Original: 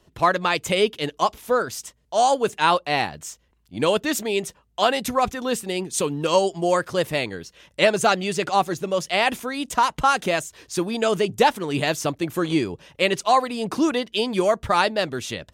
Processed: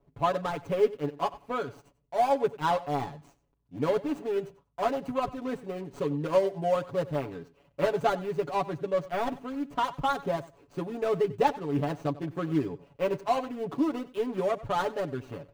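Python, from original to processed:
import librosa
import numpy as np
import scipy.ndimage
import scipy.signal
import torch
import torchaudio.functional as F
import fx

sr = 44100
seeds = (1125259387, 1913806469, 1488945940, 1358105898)

y = scipy.ndimage.median_filter(x, 25, mode='constant')
y = fx.peak_eq(y, sr, hz=12000.0, db=-7.5, octaves=2.8)
y = y + 0.84 * np.pad(y, (int(7.1 * sr / 1000.0), 0))[:len(y)]
y = fx.echo_feedback(y, sr, ms=94, feedback_pct=17, wet_db=-18.0)
y = F.gain(torch.from_numpy(y), -7.5).numpy()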